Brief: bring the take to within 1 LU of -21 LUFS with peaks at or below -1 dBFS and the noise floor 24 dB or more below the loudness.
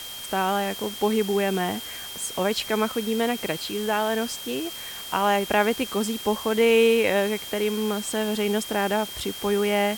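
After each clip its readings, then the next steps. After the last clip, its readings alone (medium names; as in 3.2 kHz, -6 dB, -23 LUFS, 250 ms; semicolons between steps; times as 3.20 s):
steady tone 3.2 kHz; tone level -37 dBFS; noise floor -37 dBFS; noise floor target -49 dBFS; loudness -24.5 LUFS; peak level -8.5 dBFS; loudness target -21.0 LUFS
-> band-stop 3.2 kHz, Q 30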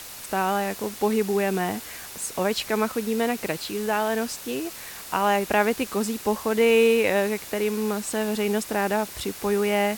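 steady tone not found; noise floor -40 dBFS; noise floor target -49 dBFS
-> noise print and reduce 9 dB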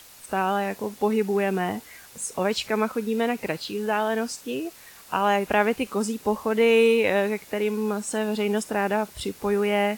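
noise floor -48 dBFS; noise floor target -49 dBFS
-> noise print and reduce 6 dB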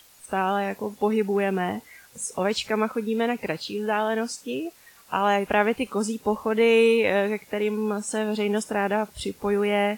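noise floor -54 dBFS; loudness -25.0 LUFS; peak level -8.5 dBFS; loudness target -21.0 LUFS
-> trim +4 dB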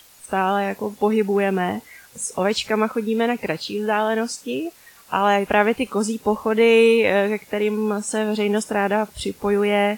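loudness -21.0 LUFS; peak level -4.5 dBFS; noise floor -50 dBFS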